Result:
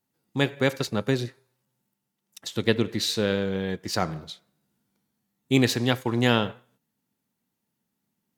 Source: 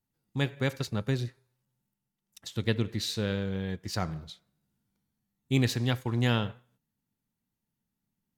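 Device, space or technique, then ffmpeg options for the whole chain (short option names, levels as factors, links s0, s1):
filter by subtraction: -filter_complex "[0:a]asplit=2[s0][s1];[s1]lowpass=370,volume=-1[s2];[s0][s2]amix=inputs=2:normalize=0,volume=2.11"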